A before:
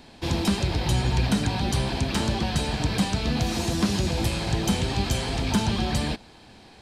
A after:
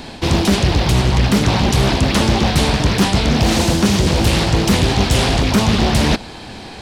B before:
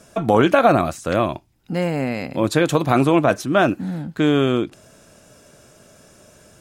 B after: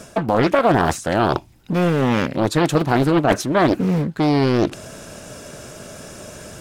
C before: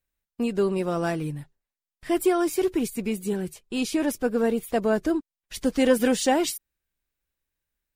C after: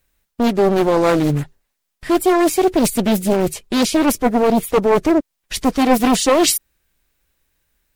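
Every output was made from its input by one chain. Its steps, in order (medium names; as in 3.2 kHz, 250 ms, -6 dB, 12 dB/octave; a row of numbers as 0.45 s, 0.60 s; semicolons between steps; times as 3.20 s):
reverse; compression 4:1, threshold -28 dBFS; reverse; loudspeaker Doppler distortion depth 0.78 ms; peak normalisation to -2 dBFS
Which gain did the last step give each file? +17.0 dB, +12.5 dB, +16.5 dB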